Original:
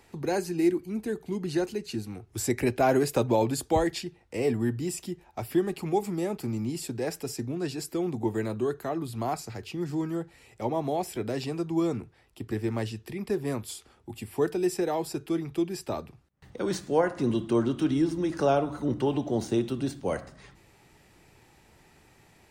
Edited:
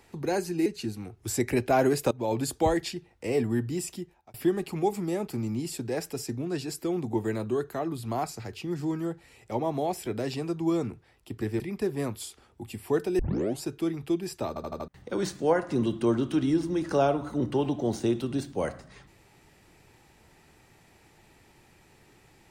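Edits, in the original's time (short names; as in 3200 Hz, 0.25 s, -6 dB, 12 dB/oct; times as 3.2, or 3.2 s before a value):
0.66–1.76 cut
3.21–3.53 fade in, from -21.5 dB
5.01–5.44 fade out
12.7–13.08 cut
14.67 tape start 0.43 s
15.96 stutter in place 0.08 s, 5 plays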